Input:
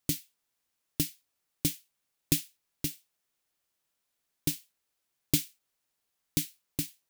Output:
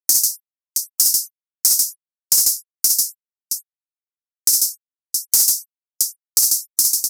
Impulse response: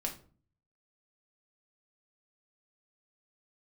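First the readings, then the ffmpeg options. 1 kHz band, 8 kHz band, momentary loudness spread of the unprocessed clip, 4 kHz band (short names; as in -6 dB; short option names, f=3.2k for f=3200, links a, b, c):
n/a, +22.5 dB, 13 LU, +16.5 dB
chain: -filter_complex "[0:a]aecho=1:1:51|60|143|670:0.316|0.708|0.596|0.251,aresample=32000,aresample=44100,equalizer=f=180:t=o:w=0.75:g=-15,acrossover=split=210[a][b];[a]flanger=delay=5:depth=6.3:regen=-90:speed=1.2:shape=sinusoidal[c];[b]aexciter=amount=5.5:drive=6.2:freq=3.8k[d];[c][d]amix=inputs=2:normalize=0,asoftclip=type=hard:threshold=-14dB,afftfilt=real='re*gte(hypot(re,im),0.00794)':imag='im*gte(hypot(re,im),0.00794)':win_size=1024:overlap=0.75,highshelf=f=4.3k:t=q:w=3:g=8,agate=range=-25dB:threshold=-40dB:ratio=16:detection=peak,acompressor=threshold=-14dB:ratio=2,volume=-1.5dB"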